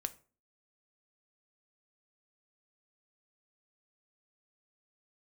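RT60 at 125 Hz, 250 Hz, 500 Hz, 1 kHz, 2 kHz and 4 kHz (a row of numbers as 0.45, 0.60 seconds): 0.45, 0.50, 0.40, 0.35, 0.30, 0.25 seconds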